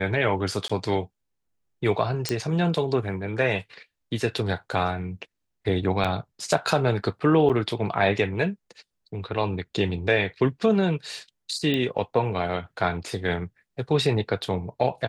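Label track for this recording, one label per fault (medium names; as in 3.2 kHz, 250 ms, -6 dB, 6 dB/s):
0.680000	0.690000	dropout 15 ms
2.290000	2.290000	pop -9 dBFS
6.040000	6.050000	dropout 6.3 ms
7.490000	7.500000	dropout 7.4 ms
11.740000	11.740000	pop -14 dBFS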